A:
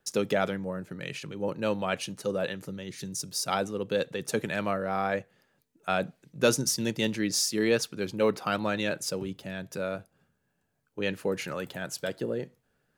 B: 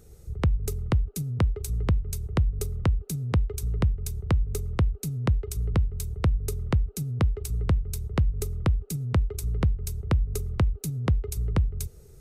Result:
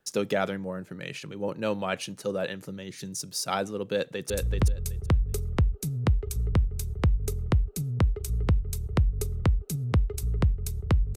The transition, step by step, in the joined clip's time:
A
3.92–4.3 echo throw 0.38 s, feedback 15%, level -4 dB
4.3 switch to B from 1.57 s

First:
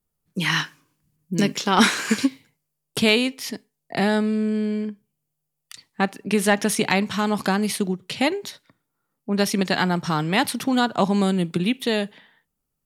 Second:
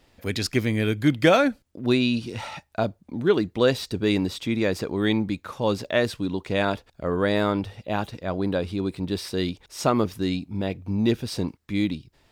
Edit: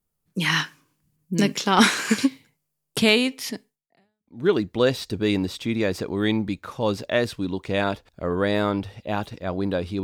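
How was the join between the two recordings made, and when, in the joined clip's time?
first
4.07 switch to second from 2.88 s, crossfade 0.76 s exponential

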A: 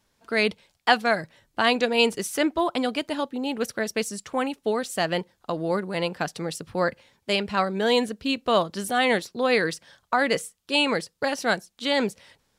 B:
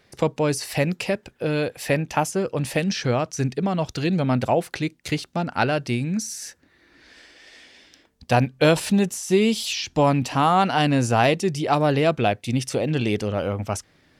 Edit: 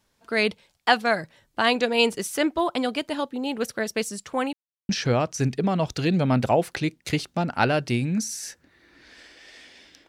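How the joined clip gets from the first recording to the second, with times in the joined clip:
A
4.53–4.89 mute
4.89 switch to B from 2.88 s

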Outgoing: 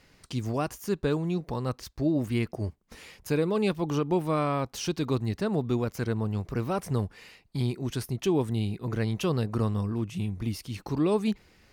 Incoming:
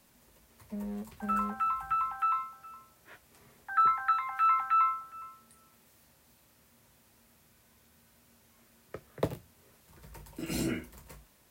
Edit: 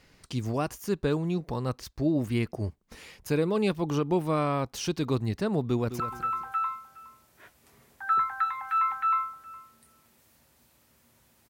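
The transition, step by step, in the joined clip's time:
outgoing
5.64–6 echo throw 0.21 s, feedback 30%, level -11 dB
6 switch to incoming from 1.68 s

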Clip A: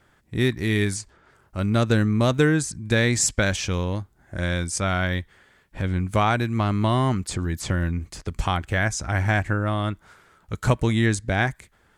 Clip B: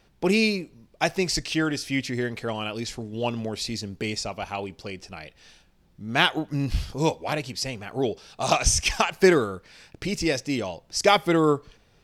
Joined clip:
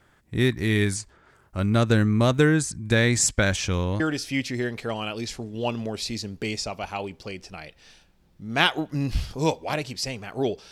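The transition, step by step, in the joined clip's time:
clip A
4 switch to clip B from 1.59 s

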